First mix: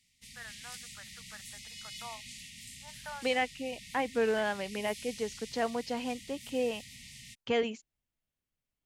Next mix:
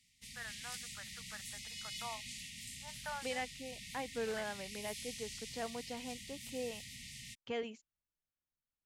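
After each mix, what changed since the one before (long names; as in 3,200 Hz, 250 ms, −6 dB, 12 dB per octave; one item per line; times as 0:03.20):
second voice −10.0 dB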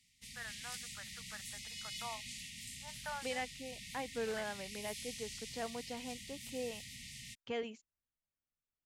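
nothing changed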